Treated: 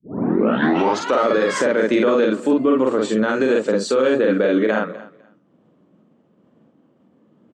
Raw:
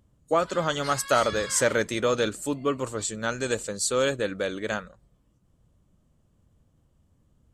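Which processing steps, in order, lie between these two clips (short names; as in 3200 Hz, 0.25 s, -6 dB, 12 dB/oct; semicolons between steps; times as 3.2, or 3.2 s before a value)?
tape start at the beginning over 1.22 s; LPF 2600 Hz 12 dB/oct; expander -60 dBFS; HPF 240 Hz 24 dB/oct; low shelf 420 Hz +12 dB; compressor 3:1, threshold -22 dBFS, peak gain reduction 7 dB; doubler 46 ms -2 dB; on a send: feedback echo 0.25 s, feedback 18%, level -22.5 dB; on the sum: maximiser +18.5 dB; gain -7.5 dB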